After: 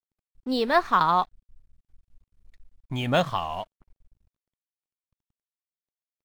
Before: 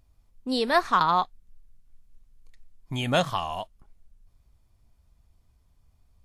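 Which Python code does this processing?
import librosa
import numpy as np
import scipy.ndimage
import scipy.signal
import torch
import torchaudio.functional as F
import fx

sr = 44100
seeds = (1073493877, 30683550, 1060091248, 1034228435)

y = fx.high_shelf(x, sr, hz=4000.0, db=-6.0)
y = np.sign(y) * np.maximum(np.abs(y) - 10.0 ** (-52.0 / 20.0), 0.0)
y = np.interp(np.arange(len(y)), np.arange(len(y))[::2], y[::2])
y = F.gain(torch.from_numpy(y), 1.5).numpy()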